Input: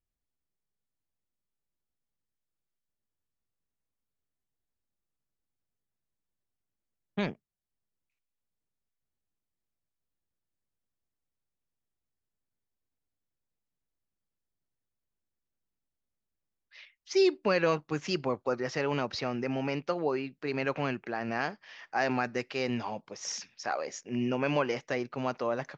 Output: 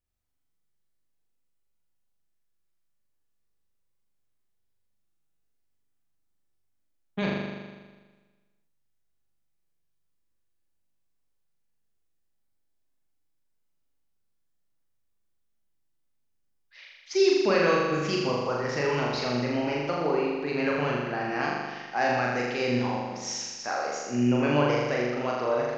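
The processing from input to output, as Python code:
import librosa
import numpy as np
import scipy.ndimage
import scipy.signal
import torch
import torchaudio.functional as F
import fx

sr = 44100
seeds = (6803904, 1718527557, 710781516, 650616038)

y = fx.room_flutter(x, sr, wall_m=7.0, rt60_s=1.4)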